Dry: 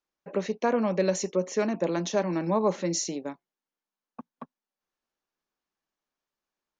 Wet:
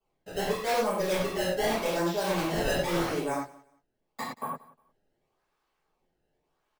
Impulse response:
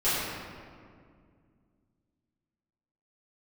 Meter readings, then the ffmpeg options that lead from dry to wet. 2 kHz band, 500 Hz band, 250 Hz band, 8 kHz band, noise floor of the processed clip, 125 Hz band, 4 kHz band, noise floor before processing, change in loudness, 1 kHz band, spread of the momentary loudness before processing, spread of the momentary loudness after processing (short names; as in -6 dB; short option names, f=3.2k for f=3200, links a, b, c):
+5.5 dB, -1.5 dB, -3.5 dB, -4.5 dB, -79 dBFS, -1.0 dB, +4.5 dB, under -85 dBFS, -1.5 dB, +2.5 dB, 8 LU, 11 LU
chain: -filter_complex "[0:a]acrossover=split=5000[a][b];[b]acompressor=threshold=-42dB:ratio=4:attack=1:release=60[c];[a][c]amix=inputs=2:normalize=0,equalizer=f=250:t=o:w=1:g=-7,equalizer=f=1k:t=o:w=1:g=4,equalizer=f=8k:t=o:w=1:g=-8,areverse,acompressor=threshold=-35dB:ratio=6,areverse,acrusher=samples=22:mix=1:aa=0.000001:lfo=1:lforange=35.2:lforate=0.85,acrossover=split=570|2600[d][e][f];[d]asoftclip=type=tanh:threshold=-38.5dB[g];[g][e][f]amix=inputs=3:normalize=0,aecho=1:1:179|358:0.0891|0.0196[h];[1:a]atrim=start_sample=2205,afade=t=out:st=0.18:d=0.01,atrim=end_sample=8379[i];[h][i]afir=irnorm=-1:irlink=0"